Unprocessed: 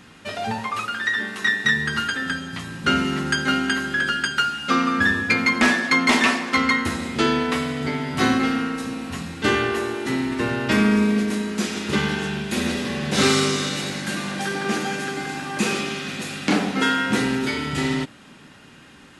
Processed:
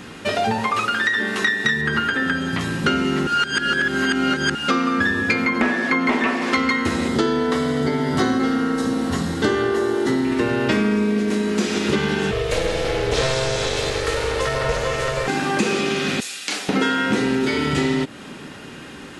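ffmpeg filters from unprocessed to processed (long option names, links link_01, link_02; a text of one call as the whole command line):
ffmpeg -i in.wav -filter_complex "[0:a]asettb=1/sr,asplit=3[link_01][link_02][link_03];[link_01]atrim=end=1.814[link_04];[link_02]atrim=start=1.81:end=2.61,asetpts=PTS-STARTPTS,afade=type=in:duration=0.004:curve=qsin,afade=type=out:start_time=0.796:duration=0.004:curve=qsin,acrossover=split=3000[link_05][link_06];[link_06]acompressor=threshold=-45dB:ratio=4:attack=1:release=60[link_07];[link_05][link_07]amix=inputs=2:normalize=0[link_08];[link_03]atrim=start=2.606[link_09];[link_04][link_08]acrossfade=duration=0.004:curve1=hsin:curve2=qsin[link_10];[link_10][link_09]acrossfade=duration=0.004:curve1=qsin:curve2=hsin,asettb=1/sr,asplit=3[link_11][link_12][link_13];[link_11]atrim=end=5.454[link_14];[link_12]atrim=start=5.45:end=6.42,asetpts=PTS-STARTPTS,afade=type=in:duration=0.004:curve=qsin,afade=type=out:start_time=0.966:duration=0.004:curve=qsin,acrossover=split=2600[link_15][link_16];[link_16]acompressor=threshold=-38dB:ratio=4:attack=1:release=60[link_17];[link_15][link_17]amix=inputs=2:normalize=0[link_18];[link_13]atrim=start=6.416[link_19];[link_14][link_18]acrossfade=duration=0.004:curve1=hsin:curve2=qsin[link_20];[link_20][link_19]acrossfade=duration=0.004:curve1=qsin:curve2=hsin,asettb=1/sr,asplit=3[link_21][link_22][link_23];[link_21]atrim=end=7.084[link_24];[link_22]atrim=start=7.08:end=10.25,asetpts=PTS-STARTPTS,afade=type=in:duration=0.004:curve=qsin,afade=type=out:start_time=3.166:duration=0.004:curve=qsin,equalizer=frequency=2500:width_type=o:width=0.26:gain=-15[link_25];[link_23]atrim=start=10.246[link_26];[link_24][link_25]acrossfade=duration=0.004:curve1=hsin:curve2=qsin[link_27];[link_27][link_26]acrossfade=duration=0.004:curve1=qsin:curve2=hsin,asettb=1/sr,asplit=3[link_28][link_29][link_30];[link_28]atrim=end=12.314[link_31];[link_29]atrim=start=12.31:end=15.28,asetpts=PTS-STARTPTS,afade=type=in:duration=0.004:curve=qsin,afade=type=out:start_time=2.966:duration=0.004:curve=qsin,aeval=exprs='val(0)*sin(2*PI*260*n/s)':channel_layout=same[link_32];[link_30]atrim=start=15.276[link_33];[link_31][link_32]acrossfade=duration=0.004:curve1=hsin:curve2=qsin[link_34];[link_34][link_33]acrossfade=duration=0.004:curve1=qsin:curve2=hsin,asettb=1/sr,asplit=3[link_35][link_36][link_37];[link_35]atrim=end=16.204[link_38];[link_36]atrim=start=16.2:end=16.69,asetpts=PTS-STARTPTS,afade=type=in:duration=0.004:curve=qsin,afade=type=out:start_time=0.486:duration=0.004:curve=qsin,aderivative[link_39];[link_37]atrim=start=16.686[link_40];[link_38][link_39]acrossfade=duration=0.004:curve1=hsin:curve2=qsin[link_41];[link_41][link_40]acrossfade=duration=0.004:curve1=qsin:curve2=hsin,asplit=3[link_42][link_43][link_44];[link_42]atrim=end=3.272[link_45];[link_43]atrim=start=3.268:end=4.552,asetpts=PTS-STARTPTS,areverse[link_46];[link_44]atrim=start=4.548[link_47];[link_45][link_46]acrossfade=duration=0.004:curve1=hsin:curve2=hsin[link_48];[link_48][link_47]acrossfade=duration=0.004:curve1=hsin:curve2=hsin,acrossover=split=9300[link_49][link_50];[link_50]acompressor=threshold=-56dB:ratio=4:attack=1:release=60[link_51];[link_49][link_51]amix=inputs=2:normalize=0,equalizer=frequency=410:width_type=o:width=1.1:gain=5.5,acompressor=threshold=-26dB:ratio=5,volume=8.5dB" out.wav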